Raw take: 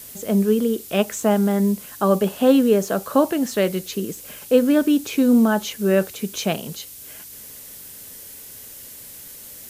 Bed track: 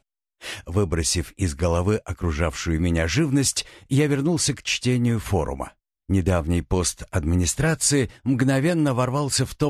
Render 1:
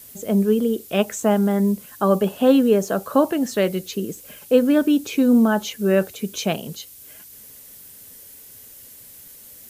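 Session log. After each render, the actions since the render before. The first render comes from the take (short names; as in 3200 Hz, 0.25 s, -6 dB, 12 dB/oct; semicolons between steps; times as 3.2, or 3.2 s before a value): denoiser 6 dB, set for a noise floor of -40 dBFS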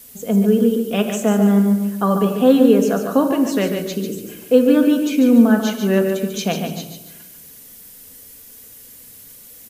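on a send: feedback echo 0.144 s, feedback 33%, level -7 dB; on the sum: shoebox room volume 3900 m³, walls furnished, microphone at 1.8 m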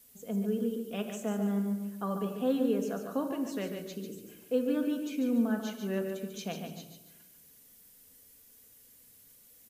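gain -16.5 dB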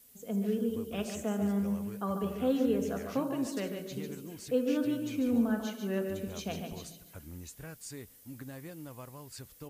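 add bed track -25 dB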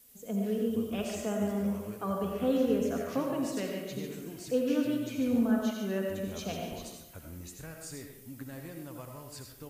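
digital reverb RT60 0.64 s, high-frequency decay 0.7×, pre-delay 45 ms, DRR 2.5 dB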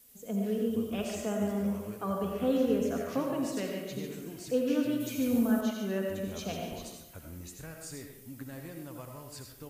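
5–5.61 high shelf 6100 Hz +11.5 dB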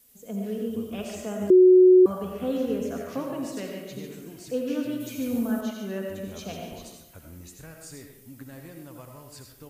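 1.5–2.06 bleep 368 Hz -10.5 dBFS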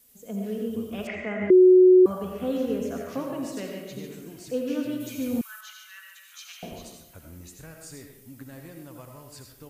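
1.07–1.73 synth low-pass 2100 Hz, resonance Q 14; 5.41–6.63 steep high-pass 1300 Hz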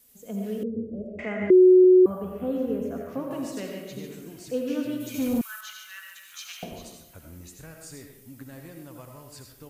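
0.63–1.19 elliptic low-pass 570 Hz; 1.84–3.31 bell 5300 Hz -13 dB 2.7 oct; 5.14–6.64 sample leveller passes 1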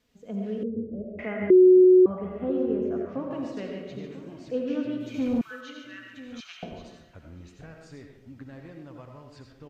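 air absorption 190 m; outdoor echo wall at 170 m, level -16 dB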